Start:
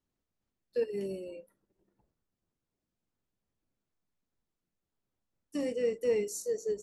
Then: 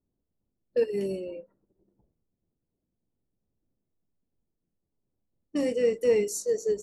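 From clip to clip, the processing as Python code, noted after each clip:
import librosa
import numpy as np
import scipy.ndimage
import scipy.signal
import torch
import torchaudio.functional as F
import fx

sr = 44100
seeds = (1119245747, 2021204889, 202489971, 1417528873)

y = fx.env_lowpass(x, sr, base_hz=530.0, full_db=-31.5)
y = y * librosa.db_to_amplitude(6.0)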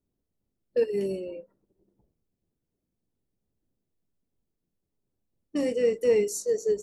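y = fx.peak_eq(x, sr, hz=410.0, db=2.0, octaves=0.23)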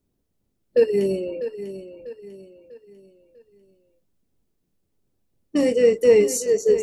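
y = fx.echo_feedback(x, sr, ms=646, feedback_pct=40, wet_db=-12.0)
y = y * librosa.db_to_amplitude(7.5)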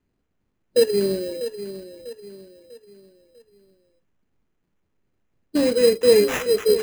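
y = fx.sample_hold(x, sr, seeds[0], rate_hz=4500.0, jitter_pct=0)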